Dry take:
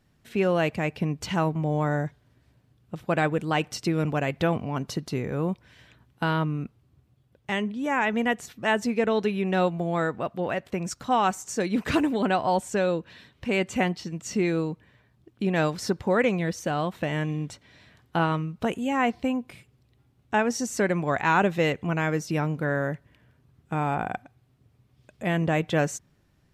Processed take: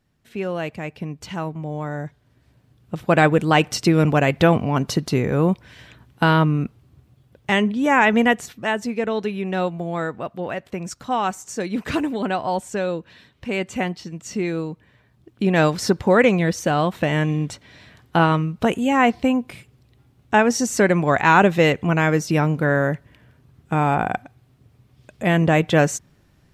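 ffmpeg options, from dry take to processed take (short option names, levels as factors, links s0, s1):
-af "volume=6.31,afade=t=in:st=1.94:d=1.31:silence=0.251189,afade=t=out:st=8.17:d=0.56:silence=0.375837,afade=t=in:st=14.7:d=0.98:silence=0.446684"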